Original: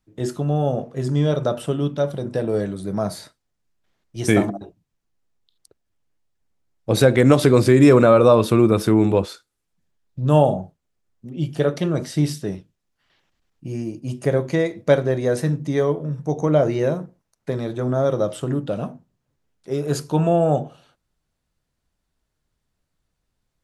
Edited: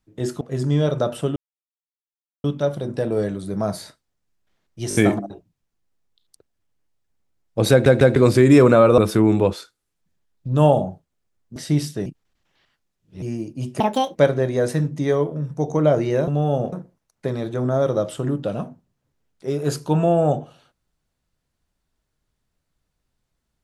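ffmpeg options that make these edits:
-filter_complex "[0:a]asplit=17[s0][s1][s2][s3][s4][s5][s6][s7][s8][s9][s10][s11][s12][s13][s14][s15][s16];[s0]atrim=end=0.412[s17];[s1]atrim=start=0.858:end=1.81,asetpts=PTS-STARTPTS,afade=t=out:st=0.948:d=0.004:c=hsin,apad=pad_dur=1.08[s18];[s2]atrim=start=1.81:end=4.282,asetpts=PTS-STARTPTS,afade=t=in:d=0.004:c=hsin[s19];[s3]atrim=start=4.258:end=4.282[s20];[s4]atrim=start=4.258:end=4.282[s21];[s5]atrim=start=4.258:end=7.172[s22];[s6]atrim=start=7.018:end=7.172[s23];[s7]atrim=start=7.018:end=7.172[s24];[s8]atrim=start=7.468:end=8.292[s25];[s9]atrim=start=8.698:end=11.282[s26];[s10]atrim=start=12.028:end=12.532[s27];[s11]atrim=start=12.528:end=13.692,asetpts=PTS-STARTPTS,areverse[s28];[s12]atrim=start=13.688:end=14.274[s29];[s13]atrim=start=14.27:end=14.84,asetpts=PTS-STARTPTS,asetrate=71001,aresample=44100,atrim=end_sample=15613,asetpts=PTS-STARTPTS[s30];[s14]atrim=start=14.836:end=16.962[s31];[s15]atrim=start=0.408:end=0.862[s32];[s16]atrim=start=16.958[s33];[s18][s19]concat=n=2:v=0:a=1[s34];[s17][s34]acrossfade=d=0.004:c1=hsin:c2=hsin[s35];[s35][s20]acrossfade=d=0.004:c1=hsin:c2=hsin[s36];[s36][s21]acrossfade=d=0.004:c1=hsin:c2=hsin[s37];[s37][s22]acrossfade=d=0.004:c1=hsin:c2=hsin[s38];[s38][s23]acrossfade=d=0.004:c1=hsin:c2=hsin[s39];[s39][s24]acrossfade=d=0.004:c1=hsin:c2=hsin[s40];[s40][s25]acrossfade=d=0.004:c1=hsin:c2=hsin[s41];[s41][s26]acrossfade=d=0.004:c1=hsin:c2=hsin[s42];[s42][s27]acrossfade=d=0.004:c1=hsin:c2=hsin[s43];[s43][s28]acrossfade=d=0.004:c1=hsin:c2=hsin[s44];[s44][s29]acrossfade=d=0.004:c1=hsin:c2=hsin[s45];[s45][s30]acrossfade=d=0.004:c1=hsin:c2=hsin[s46];[s46][s31]acrossfade=d=0.004:c1=hsin:c2=hsin[s47];[s47][s32]acrossfade=d=0.004:c1=hsin:c2=hsin[s48];[s48][s33]acrossfade=d=0.004:c1=hsin:c2=hsin"

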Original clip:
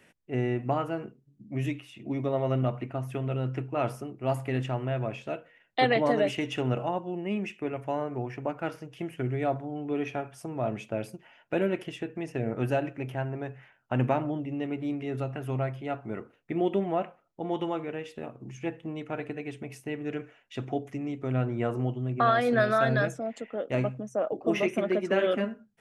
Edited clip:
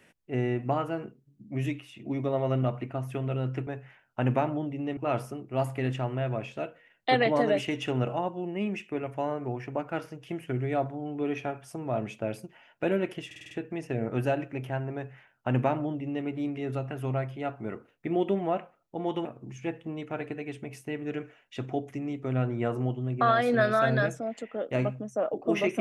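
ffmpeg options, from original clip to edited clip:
-filter_complex "[0:a]asplit=9[s0][s1][s2][s3][s4][s5][s6][s7][s8];[s0]atrim=end=3.672[s9];[s1]atrim=start=13.398:end=14.702[s10];[s2]atrim=start=3.668:end=12.012[s11];[s3]atrim=start=11.958:end=12.012[s12];[s4]atrim=start=11.958:end=12.012[s13];[s5]atrim=start=11.958:end=12.012[s14];[s6]atrim=start=11.958:end=12.012[s15];[s7]atrim=start=11.958:end=17.702[s16];[s8]atrim=start=18.238[s17];[s9][s10]acrossfade=d=0.004:c1=hsin:c2=hsin[s18];[s18][s11]acrossfade=d=0.004:c1=hsin:c2=hsin[s19];[s19][s12]acrossfade=d=0.004:c1=hsin:c2=hsin[s20];[s20][s13]acrossfade=d=0.004:c1=hsin:c2=hsin[s21];[s21][s14]acrossfade=d=0.004:c1=hsin:c2=hsin[s22];[s22][s15]acrossfade=d=0.004:c1=hsin:c2=hsin[s23];[s23][s16]acrossfade=d=0.004:c1=hsin:c2=hsin[s24];[s24][s17]acrossfade=d=0.004:c1=hsin:c2=hsin"

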